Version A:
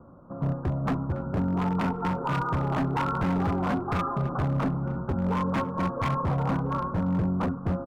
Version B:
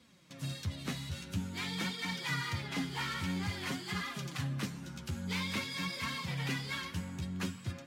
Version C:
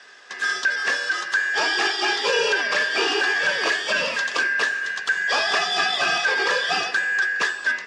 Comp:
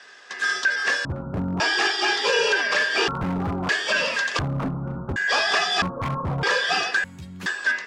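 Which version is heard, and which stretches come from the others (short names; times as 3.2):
C
1.05–1.6 from A
3.08–3.69 from A
4.39–5.16 from A
5.82–6.43 from A
7.04–7.46 from B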